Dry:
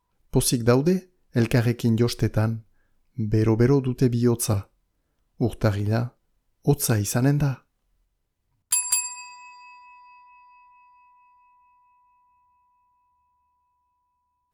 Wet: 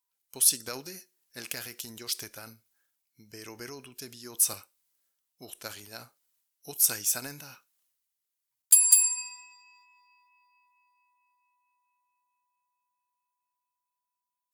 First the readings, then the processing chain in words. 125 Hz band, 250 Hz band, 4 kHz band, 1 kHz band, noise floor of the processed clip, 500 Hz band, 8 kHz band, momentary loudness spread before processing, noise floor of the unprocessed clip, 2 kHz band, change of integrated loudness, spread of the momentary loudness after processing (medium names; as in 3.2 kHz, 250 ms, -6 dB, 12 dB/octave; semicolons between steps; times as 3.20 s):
-31.5 dB, -25.5 dB, -1.0 dB, -13.5 dB, under -85 dBFS, -21.5 dB, +4.0 dB, 11 LU, -74 dBFS, -8.0 dB, -0.5 dB, 24 LU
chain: differentiator; transient shaper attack +3 dB, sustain +7 dB